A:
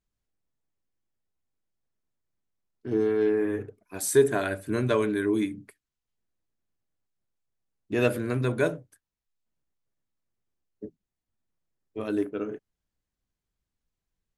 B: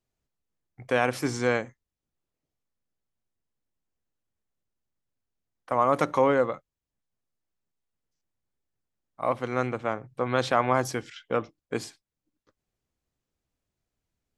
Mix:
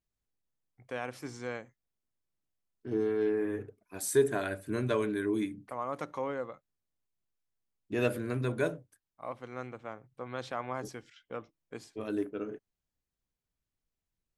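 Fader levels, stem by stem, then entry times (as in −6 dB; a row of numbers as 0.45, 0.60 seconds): −5.5, −13.5 decibels; 0.00, 0.00 seconds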